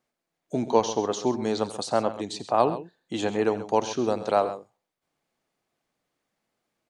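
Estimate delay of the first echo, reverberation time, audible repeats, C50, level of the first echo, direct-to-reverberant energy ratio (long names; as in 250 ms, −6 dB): 87 ms, no reverb audible, 2, no reverb audible, −15.5 dB, no reverb audible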